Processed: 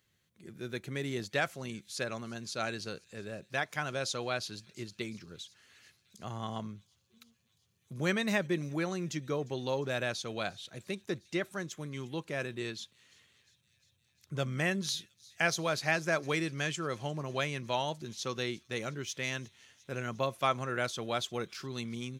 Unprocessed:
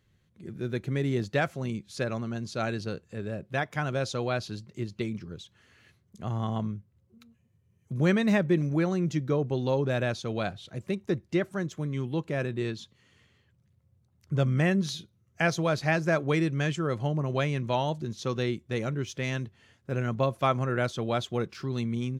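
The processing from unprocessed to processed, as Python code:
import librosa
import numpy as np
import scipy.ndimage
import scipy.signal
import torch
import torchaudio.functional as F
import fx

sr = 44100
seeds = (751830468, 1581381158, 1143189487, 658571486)

y = fx.tilt_eq(x, sr, slope=2.5)
y = fx.echo_wet_highpass(y, sr, ms=353, feedback_pct=76, hz=4000.0, wet_db=-20.5)
y = y * 10.0 ** (-3.5 / 20.0)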